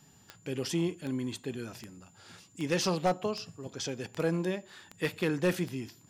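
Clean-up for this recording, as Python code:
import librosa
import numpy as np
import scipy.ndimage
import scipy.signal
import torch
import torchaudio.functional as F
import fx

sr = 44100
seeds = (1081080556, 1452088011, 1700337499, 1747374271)

y = fx.fix_declip(x, sr, threshold_db=-19.5)
y = fx.fix_declick_ar(y, sr, threshold=10.0)
y = fx.notch(y, sr, hz=7100.0, q=30.0)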